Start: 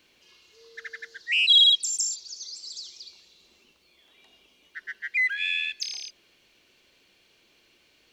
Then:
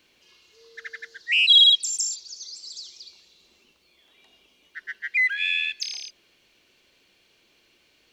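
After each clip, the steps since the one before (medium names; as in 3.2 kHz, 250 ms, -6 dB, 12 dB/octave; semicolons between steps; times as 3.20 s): dynamic bell 2.6 kHz, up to +3 dB, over -38 dBFS, Q 0.74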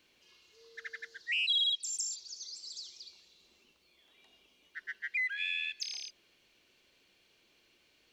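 compression 2:1, threshold -29 dBFS, peak gain reduction 10 dB; trim -6 dB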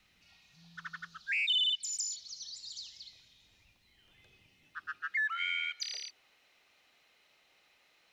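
high-pass sweep 96 Hz -> 880 Hz, 2.47–5.53 s; frequency shift -290 Hz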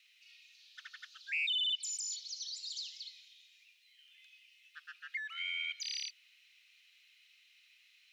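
peak limiter -33 dBFS, peak gain reduction 11 dB; ladder high-pass 2.1 kHz, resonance 40%; trim +8.5 dB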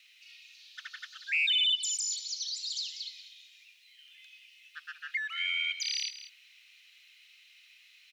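delay 189 ms -13.5 dB; trim +6.5 dB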